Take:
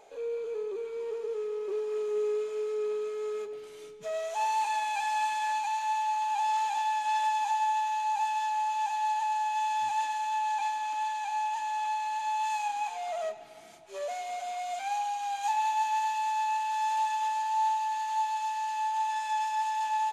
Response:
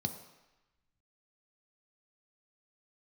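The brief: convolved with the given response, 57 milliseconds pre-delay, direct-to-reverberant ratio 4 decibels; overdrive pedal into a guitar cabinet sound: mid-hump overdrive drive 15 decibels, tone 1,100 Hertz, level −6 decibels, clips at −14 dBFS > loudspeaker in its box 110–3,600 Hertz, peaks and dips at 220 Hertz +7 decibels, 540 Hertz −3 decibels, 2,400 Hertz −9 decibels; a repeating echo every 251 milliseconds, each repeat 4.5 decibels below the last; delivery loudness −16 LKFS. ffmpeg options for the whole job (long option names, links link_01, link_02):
-filter_complex "[0:a]aecho=1:1:251|502|753|1004|1255|1506|1757|2008|2259:0.596|0.357|0.214|0.129|0.0772|0.0463|0.0278|0.0167|0.01,asplit=2[link_01][link_02];[1:a]atrim=start_sample=2205,adelay=57[link_03];[link_02][link_03]afir=irnorm=-1:irlink=0,volume=-5.5dB[link_04];[link_01][link_04]amix=inputs=2:normalize=0,asplit=2[link_05][link_06];[link_06]highpass=frequency=720:poles=1,volume=15dB,asoftclip=type=tanh:threshold=-14dB[link_07];[link_05][link_07]amix=inputs=2:normalize=0,lowpass=frequency=1100:poles=1,volume=-6dB,highpass=110,equalizer=frequency=220:width_type=q:width=4:gain=7,equalizer=frequency=540:width_type=q:width=4:gain=-3,equalizer=frequency=2400:width_type=q:width=4:gain=-9,lowpass=frequency=3600:width=0.5412,lowpass=frequency=3600:width=1.3066,volume=8.5dB"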